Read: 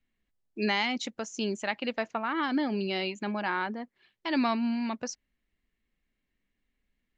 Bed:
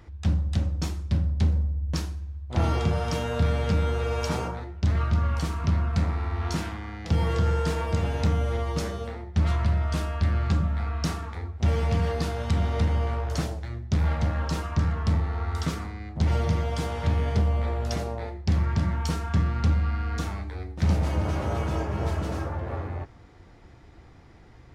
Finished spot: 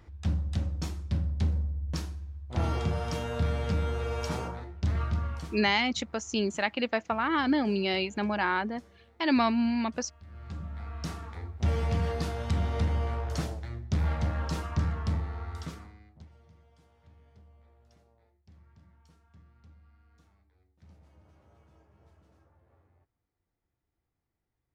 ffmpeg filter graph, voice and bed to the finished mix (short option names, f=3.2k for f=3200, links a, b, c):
-filter_complex "[0:a]adelay=4950,volume=2.5dB[a];[1:a]volume=18dB,afade=t=out:st=5.04:d=0.69:silence=0.0794328,afade=t=in:st=10.26:d=1.4:silence=0.0707946,afade=t=out:st=14.8:d=1.49:silence=0.0316228[b];[a][b]amix=inputs=2:normalize=0"